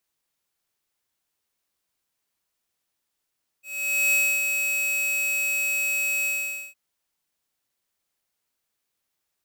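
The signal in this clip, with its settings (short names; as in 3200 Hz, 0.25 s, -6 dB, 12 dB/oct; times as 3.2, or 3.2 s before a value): ADSR square 2560 Hz, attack 0.495 s, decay 0.278 s, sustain -5 dB, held 2.63 s, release 0.481 s -20 dBFS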